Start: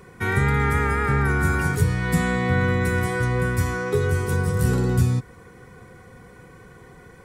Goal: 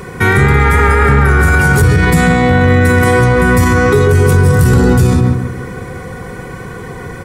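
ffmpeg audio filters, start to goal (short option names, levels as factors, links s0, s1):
-filter_complex "[0:a]asplit=2[s0][s1];[s1]adelay=142,lowpass=f=1400:p=1,volume=0.668,asplit=2[s2][s3];[s3]adelay=142,lowpass=f=1400:p=1,volume=0.39,asplit=2[s4][s5];[s5]adelay=142,lowpass=f=1400:p=1,volume=0.39,asplit=2[s6][s7];[s7]adelay=142,lowpass=f=1400:p=1,volume=0.39,asplit=2[s8][s9];[s9]adelay=142,lowpass=f=1400:p=1,volume=0.39[s10];[s0][s2][s4][s6][s8][s10]amix=inputs=6:normalize=0,acontrast=90,alimiter=level_in=3.98:limit=0.891:release=50:level=0:latency=1,volume=0.891"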